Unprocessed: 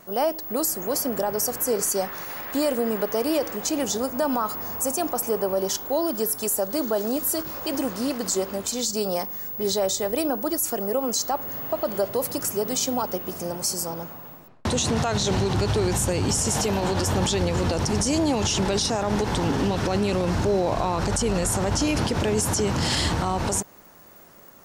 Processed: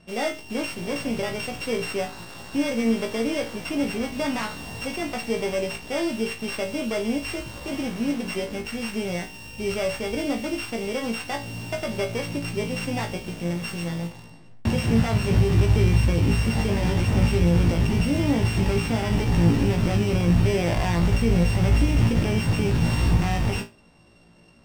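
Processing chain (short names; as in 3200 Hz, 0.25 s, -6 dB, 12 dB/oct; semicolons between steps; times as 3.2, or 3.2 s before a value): sample sorter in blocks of 16 samples; LPF 6000 Hz 12 dB/oct; tone controls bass +11 dB, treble 0 dB; in parallel at -8 dB: bit-crush 5-bit; on the sum: resonator 57 Hz, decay 0.24 s, harmonics all, mix 100%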